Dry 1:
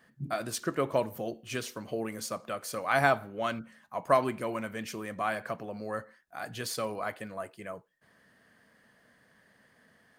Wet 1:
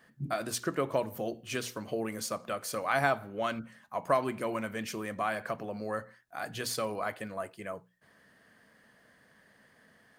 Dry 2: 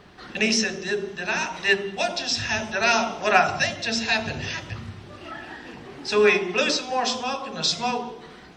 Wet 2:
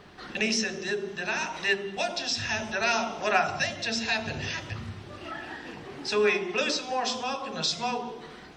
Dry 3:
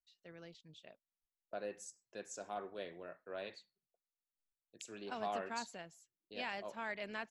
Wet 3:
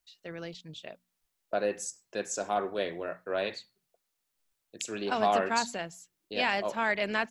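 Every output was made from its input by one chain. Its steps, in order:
mains-hum notches 60/120/180/240 Hz
in parallel at +2.5 dB: downward compressor, threshold −30 dBFS
on the sum: normalise the peak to −12 dBFS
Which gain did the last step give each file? −6.0, −8.0, +6.5 decibels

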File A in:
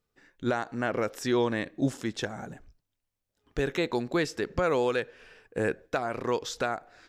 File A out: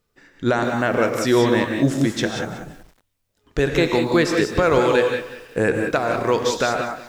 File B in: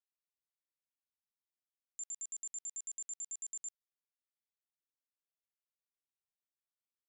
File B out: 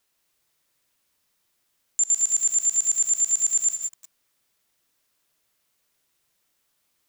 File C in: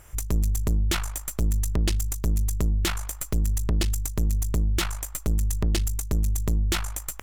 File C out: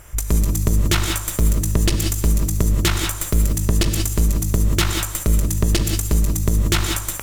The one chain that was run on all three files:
notch filter 800 Hz, Q 20
reverb whose tail is shaped and stops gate 210 ms rising, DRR 3.5 dB
feedback echo at a low word length 187 ms, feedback 35%, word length 8 bits, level −14.5 dB
loudness normalisation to −20 LKFS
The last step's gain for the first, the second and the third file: +8.5, +22.0, +6.5 decibels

